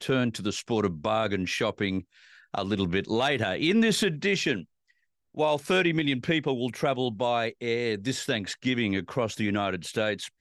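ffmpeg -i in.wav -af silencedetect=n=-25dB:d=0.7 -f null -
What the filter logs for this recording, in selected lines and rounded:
silence_start: 4.56
silence_end: 5.39 | silence_duration: 0.83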